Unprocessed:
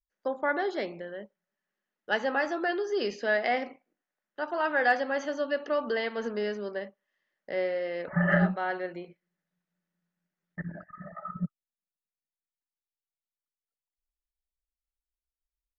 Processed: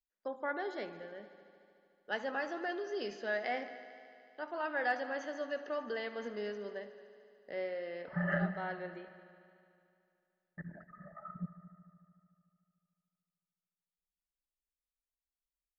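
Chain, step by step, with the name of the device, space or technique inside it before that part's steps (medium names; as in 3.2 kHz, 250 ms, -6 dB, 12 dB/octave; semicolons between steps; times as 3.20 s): multi-head tape echo (multi-head delay 74 ms, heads all three, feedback 66%, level -20 dB; wow and flutter 18 cents); trim -9 dB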